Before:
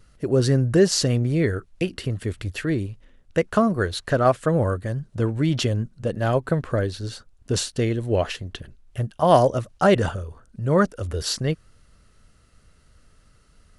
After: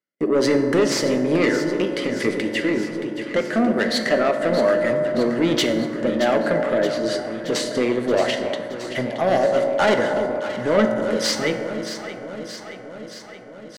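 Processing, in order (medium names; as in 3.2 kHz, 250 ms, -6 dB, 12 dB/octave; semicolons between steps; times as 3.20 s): tracing distortion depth 0.091 ms; Bessel low-pass 6 kHz, order 2; gate -43 dBFS, range -36 dB; high-pass 210 Hz 24 dB/octave; peaking EQ 1.9 kHz +9.5 dB 0.21 oct; in parallel at +2 dB: compression, threshold -29 dBFS, peak gain reduction 18 dB; on the sum: rotary cabinet horn 1.2 Hz; pitch shift +1 st; saturation -18 dBFS, distortion -10 dB; flange 0.23 Hz, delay 6.8 ms, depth 3 ms, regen -77%; echo whose repeats swap between lows and highs 312 ms, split 970 Hz, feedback 81%, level -9 dB; on a send at -5 dB: reverberation RT60 2.5 s, pre-delay 3 ms; on the sum: trim +8.5 dB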